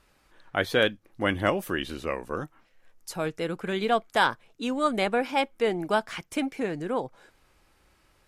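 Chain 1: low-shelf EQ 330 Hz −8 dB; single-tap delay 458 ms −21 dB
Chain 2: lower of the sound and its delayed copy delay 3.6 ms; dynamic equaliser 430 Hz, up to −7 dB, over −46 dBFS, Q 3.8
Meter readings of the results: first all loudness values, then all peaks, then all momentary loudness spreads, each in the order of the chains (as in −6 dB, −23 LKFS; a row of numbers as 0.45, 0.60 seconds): −29.5, −29.5 LKFS; −8.5, −9.5 dBFS; 10, 10 LU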